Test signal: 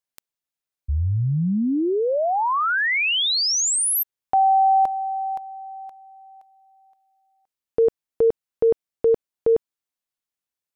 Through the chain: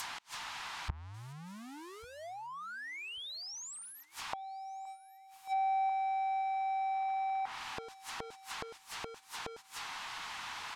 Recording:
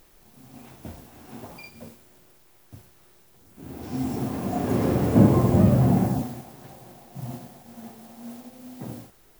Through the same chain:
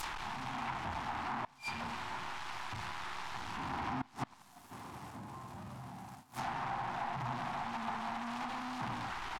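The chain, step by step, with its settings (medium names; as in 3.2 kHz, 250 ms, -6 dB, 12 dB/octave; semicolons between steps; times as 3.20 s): jump at every zero crossing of -24 dBFS; gate -20 dBFS, range -19 dB; resonant low shelf 680 Hz -9.5 dB, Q 3; peak limiter -20.5 dBFS; compression 3:1, threshold -27 dBFS; inverted gate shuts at -38 dBFS, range -31 dB; feedback delay 1141 ms, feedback 27%, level -23.5 dB; low-pass that closes with the level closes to 1.6 kHz, closed at -44.5 dBFS; trim +14 dB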